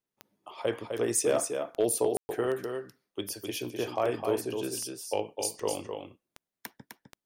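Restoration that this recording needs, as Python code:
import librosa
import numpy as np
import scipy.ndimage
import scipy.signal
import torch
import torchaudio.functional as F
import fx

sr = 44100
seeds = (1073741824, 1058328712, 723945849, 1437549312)

y = fx.fix_declip(x, sr, threshold_db=-17.0)
y = fx.fix_declick_ar(y, sr, threshold=10.0)
y = fx.fix_ambience(y, sr, seeds[0], print_start_s=6.67, print_end_s=7.17, start_s=2.17, end_s=2.29)
y = fx.fix_echo_inverse(y, sr, delay_ms=256, level_db=-6.0)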